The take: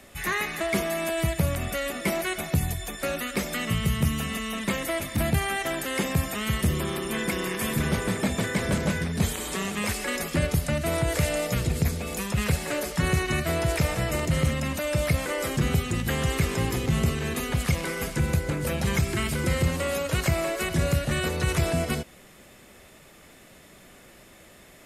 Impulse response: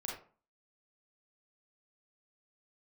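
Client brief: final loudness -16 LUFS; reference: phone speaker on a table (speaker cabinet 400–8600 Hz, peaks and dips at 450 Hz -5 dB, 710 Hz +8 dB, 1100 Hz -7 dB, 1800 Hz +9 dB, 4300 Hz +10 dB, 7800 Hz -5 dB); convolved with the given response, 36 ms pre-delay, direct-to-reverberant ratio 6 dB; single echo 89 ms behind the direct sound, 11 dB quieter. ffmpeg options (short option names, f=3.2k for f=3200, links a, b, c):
-filter_complex "[0:a]aecho=1:1:89:0.282,asplit=2[a][b];[1:a]atrim=start_sample=2205,adelay=36[c];[b][c]afir=irnorm=-1:irlink=0,volume=-6dB[d];[a][d]amix=inputs=2:normalize=0,highpass=f=400:w=0.5412,highpass=f=400:w=1.3066,equalizer=f=450:t=q:w=4:g=-5,equalizer=f=710:t=q:w=4:g=8,equalizer=f=1.1k:t=q:w=4:g=-7,equalizer=f=1.8k:t=q:w=4:g=9,equalizer=f=4.3k:t=q:w=4:g=10,equalizer=f=7.8k:t=q:w=4:g=-5,lowpass=f=8.6k:w=0.5412,lowpass=f=8.6k:w=1.3066,volume=9.5dB"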